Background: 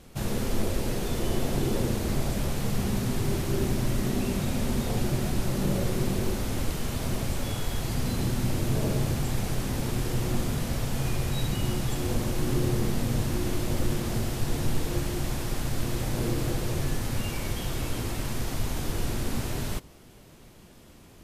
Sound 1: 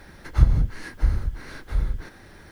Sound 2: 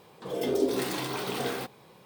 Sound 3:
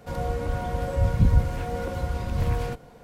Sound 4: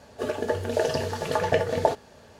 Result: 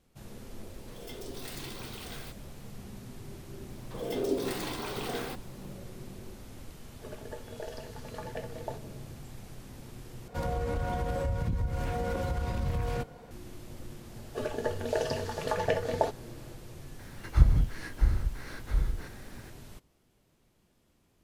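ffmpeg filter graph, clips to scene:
ffmpeg -i bed.wav -i cue0.wav -i cue1.wav -i cue2.wav -i cue3.wav -filter_complex "[2:a]asplit=2[link_01][link_02];[4:a]asplit=2[link_03][link_04];[0:a]volume=-17.5dB[link_05];[link_01]tiltshelf=frequency=1100:gain=-7.5[link_06];[link_03]highpass=140[link_07];[3:a]acompressor=threshold=-26dB:ratio=6:attack=3.2:release=140:knee=1:detection=peak[link_08];[link_05]asplit=2[link_09][link_10];[link_09]atrim=end=10.284[link_11];[link_08]atrim=end=3.03,asetpts=PTS-STARTPTS,volume=-0.5dB[link_12];[link_10]atrim=start=13.306[link_13];[link_06]atrim=end=2.05,asetpts=PTS-STARTPTS,volume=-14dB,afade=type=in:duration=0.004:curve=hsin,afade=type=out:start_time=2.046:duration=0.004:curve=hsin,adelay=660[link_14];[link_02]atrim=end=2.05,asetpts=PTS-STARTPTS,volume=-4dB,afade=type=in:duration=0.004:curve=hsin,afade=type=out:start_time=2.046:duration=0.004:curve=hsin,adelay=162729S[link_15];[link_07]atrim=end=2.39,asetpts=PTS-STARTPTS,volume=-17dB,afade=type=in:duration=0.004:curve=hsin,afade=type=out:start_time=2.386:duration=0.004:curve=hsin,adelay=6830[link_16];[link_04]atrim=end=2.39,asetpts=PTS-STARTPTS,volume=-5.5dB,afade=type=in:duration=0.004:curve=hsin,afade=type=out:start_time=2.386:duration=0.004:curve=hsin,adelay=14160[link_17];[1:a]atrim=end=2.51,asetpts=PTS-STARTPTS,volume=-4dB,afade=type=in:duration=0.004:curve=hsin,afade=type=out:start_time=2.506:duration=0.004:curve=hsin,adelay=16990[link_18];[link_11][link_12]acrossfade=duration=0.004:curve1=hsin:curve2=hsin[link_19];[link_19][link_13]acrossfade=duration=0.004:curve1=hsin:curve2=hsin[link_20];[link_20][link_14][link_15][link_16][link_17][link_18]amix=inputs=6:normalize=0" out.wav

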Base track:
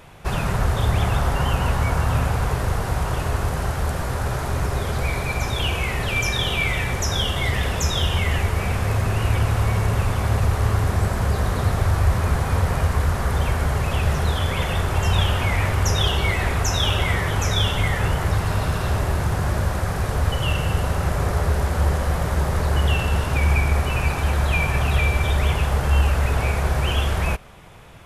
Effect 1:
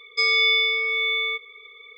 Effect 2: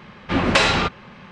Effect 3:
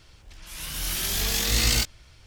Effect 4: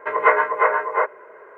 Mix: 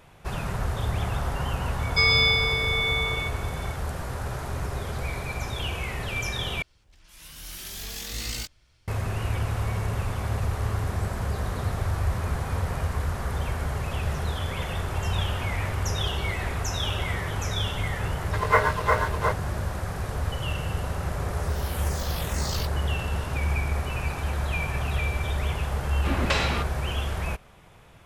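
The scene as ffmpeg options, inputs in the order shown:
ffmpeg -i bed.wav -i cue0.wav -i cue1.wav -i cue2.wav -i cue3.wav -filter_complex "[3:a]asplit=2[link_01][link_02];[0:a]volume=-7.5dB[link_03];[1:a]aecho=1:1:129:0.531[link_04];[4:a]aeval=exprs='sgn(val(0))*max(abs(val(0))-0.0282,0)':channel_layout=same[link_05];[link_02]asplit=2[link_06][link_07];[link_07]afreqshift=-2.1[link_08];[link_06][link_08]amix=inputs=2:normalize=1[link_09];[link_03]asplit=2[link_10][link_11];[link_10]atrim=end=6.624[link_12];[link_01]atrim=end=2.26,asetpts=PTS-STARTPTS,volume=-10.5dB[link_13];[link_11]atrim=start=8.876[link_14];[link_04]atrim=end=1.97,asetpts=PTS-STARTPTS,afade=type=in:duration=0.004:curve=hsin,afade=type=out:start_time=1.966:duration=0.004:curve=hsin,adelay=1790[link_15];[link_05]atrim=end=1.57,asetpts=PTS-STARTPTS,volume=-4dB,afade=type=in:duration=0.004:curve=hsin,afade=type=out:start_time=1.566:duration=0.004:curve=hsin,adelay=18270[link_16];[link_09]atrim=end=2.26,asetpts=PTS-STARTPTS,volume=-8.5dB,afade=type=in:duration=0.004:curve=hsin,afade=type=out:start_time=2.256:duration=0.004:curve=hsin,adelay=20820[link_17];[2:a]atrim=end=1.31,asetpts=PTS-STARTPTS,volume=-9dB,afade=type=in:duration=0.004:curve=hsin,afade=type=out:start_time=1.306:duration=0.004:curve=hsin,adelay=25750[link_18];[link_12][link_13]acrossfade=duration=0.004:curve1=hsin:curve2=hsin[link_19];[link_19][link_14]acrossfade=duration=0.004:curve1=hsin:curve2=hsin[link_20];[link_20][link_15][link_16][link_17][link_18]amix=inputs=5:normalize=0" out.wav

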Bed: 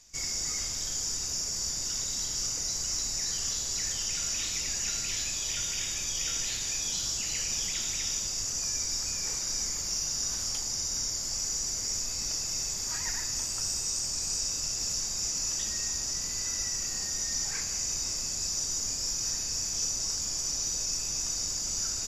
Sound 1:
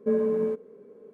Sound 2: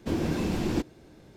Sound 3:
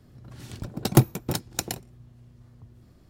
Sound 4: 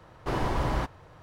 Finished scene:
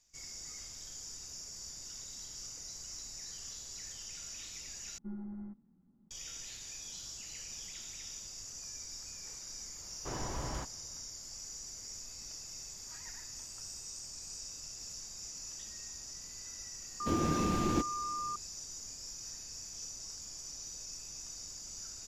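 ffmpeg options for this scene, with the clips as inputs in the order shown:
ffmpeg -i bed.wav -i cue0.wav -i cue1.wav -i cue2.wav -i cue3.wav -filter_complex "[0:a]volume=-14dB[link_01];[1:a]highpass=frequency=230:width_type=q:width=0.5412,highpass=frequency=230:width_type=q:width=1.307,lowpass=frequency=2100:width_type=q:width=0.5176,lowpass=frequency=2100:width_type=q:width=0.7071,lowpass=frequency=2100:width_type=q:width=1.932,afreqshift=-230[link_02];[2:a]aeval=exprs='val(0)+0.0282*sin(2*PI*1200*n/s)':channel_layout=same[link_03];[link_01]asplit=2[link_04][link_05];[link_04]atrim=end=4.984[link_06];[link_02]atrim=end=1.13,asetpts=PTS-STARTPTS,volume=-17.5dB[link_07];[link_05]atrim=start=6.106[link_08];[4:a]atrim=end=1.22,asetpts=PTS-STARTPTS,volume=-11.5dB,afade=type=in:duration=0.004:curve=hsin,afade=type=out:start_time=1.216:duration=0.004:curve=hsin,adelay=9790[link_09];[link_03]atrim=end=1.36,asetpts=PTS-STARTPTS,volume=-4dB,afade=type=in:duration=0.004:curve=hsin,afade=type=out:start_time=1.356:duration=0.004:curve=hsin,adelay=749700S[link_10];[link_06][link_07]acrossfade=duration=0.004:curve1=hsin:curve2=hsin[link_11];[link_11][link_08]acrossfade=duration=0.004:curve1=hsin:curve2=hsin[link_12];[link_12][link_09][link_10]amix=inputs=3:normalize=0" out.wav

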